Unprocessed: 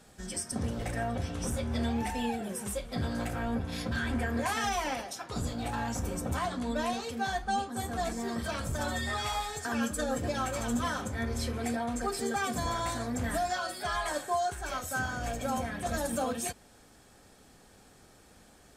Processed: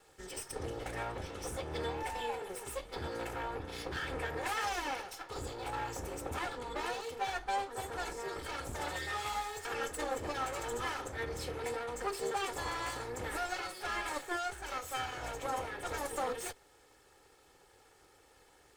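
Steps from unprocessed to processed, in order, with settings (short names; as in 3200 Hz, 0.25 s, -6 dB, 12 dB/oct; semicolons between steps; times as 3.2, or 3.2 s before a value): minimum comb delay 2.3 ms; tone controls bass -7 dB, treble -4 dB; gain -2 dB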